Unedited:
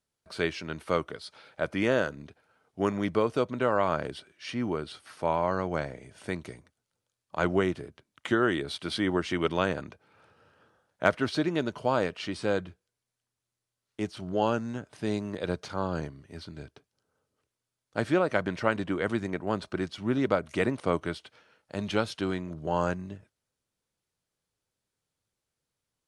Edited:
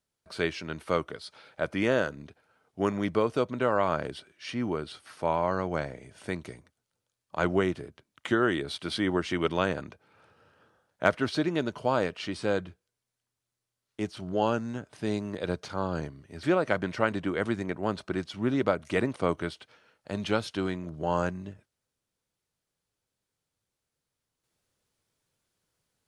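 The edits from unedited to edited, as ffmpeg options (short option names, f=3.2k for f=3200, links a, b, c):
-filter_complex "[0:a]asplit=2[a][b];[a]atrim=end=16.432[c];[b]atrim=start=18.068[d];[c][d]acrossfade=d=0.004:c1=hsin:c2=hsin"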